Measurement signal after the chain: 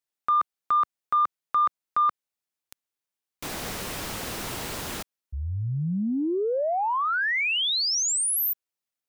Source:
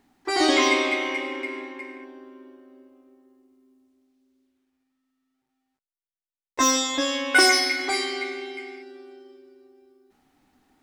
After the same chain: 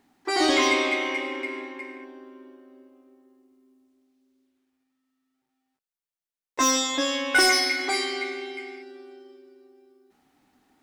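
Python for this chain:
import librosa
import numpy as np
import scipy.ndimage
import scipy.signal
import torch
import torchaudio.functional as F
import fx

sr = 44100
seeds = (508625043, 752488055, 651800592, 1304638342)

y = fx.low_shelf(x, sr, hz=63.0, db=-12.0)
y = 10.0 ** (-11.5 / 20.0) * np.tanh(y / 10.0 ** (-11.5 / 20.0))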